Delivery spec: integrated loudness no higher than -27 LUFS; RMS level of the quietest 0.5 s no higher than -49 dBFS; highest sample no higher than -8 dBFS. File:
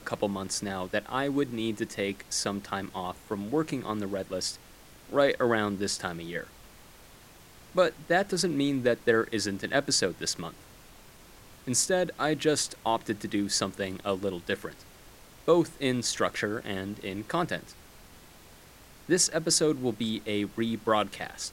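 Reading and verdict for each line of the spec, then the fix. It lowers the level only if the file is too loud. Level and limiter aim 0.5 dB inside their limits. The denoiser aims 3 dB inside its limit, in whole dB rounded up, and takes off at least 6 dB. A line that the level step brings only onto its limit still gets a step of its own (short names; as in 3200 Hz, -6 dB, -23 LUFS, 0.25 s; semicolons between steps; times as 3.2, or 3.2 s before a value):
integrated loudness -29.0 LUFS: OK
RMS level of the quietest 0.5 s -53 dBFS: OK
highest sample -9.5 dBFS: OK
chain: none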